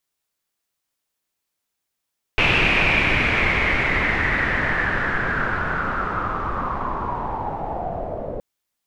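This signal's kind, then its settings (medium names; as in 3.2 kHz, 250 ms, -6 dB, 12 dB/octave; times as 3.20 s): swept filtered noise pink, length 6.02 s lowpass, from 2.6 kHz, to 550 Hz, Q 6.3, linear, gain ramp -11 dB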